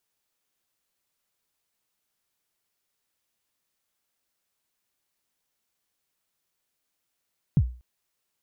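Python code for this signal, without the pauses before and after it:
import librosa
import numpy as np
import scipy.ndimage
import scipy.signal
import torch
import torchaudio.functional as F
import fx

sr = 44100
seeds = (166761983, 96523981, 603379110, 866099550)

y = fx.drum_kick(sr, seeds[0], length_s=0.24, level_db=-12.5, start_hz=180.0, end_hz=61.0, sweep_ms=57.0, decay_s=0.37, click=False)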